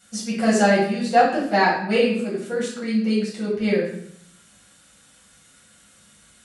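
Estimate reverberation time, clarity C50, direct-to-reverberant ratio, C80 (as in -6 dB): 0.65 s, 3.0 dB, -7.5 dB, 7.0 dB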